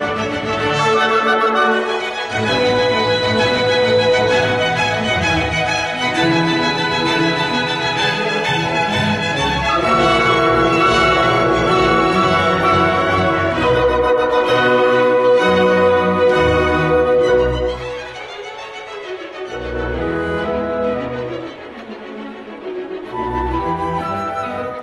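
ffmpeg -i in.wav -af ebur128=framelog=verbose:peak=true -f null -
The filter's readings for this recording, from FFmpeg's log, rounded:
Integrated loudness:
  I:         -15.3 LUFS
  Threshold: -25.9 LUFS
Loudness range:
  LRA:         9.7 LU
  Threshold: -35.7 LUFS
  LRA low:   -23.1 LUFS
  LRA high:  -13.4 LUFS
True peak:
  Peak:       -3.1 dBFS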